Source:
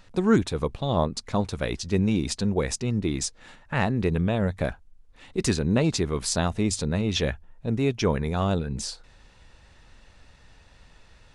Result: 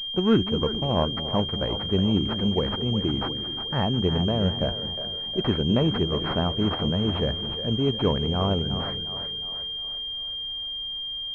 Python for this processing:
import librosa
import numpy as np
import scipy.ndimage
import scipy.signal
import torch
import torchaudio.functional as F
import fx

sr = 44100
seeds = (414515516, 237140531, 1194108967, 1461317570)

y = fx.echo_split(x, sr, split_hz=400.0, low_ms=215, high_ms=359, feedback_pct=52, wet_db=-9.5)
y = fx.pwm(y, sr, carrier_hz=3200.0)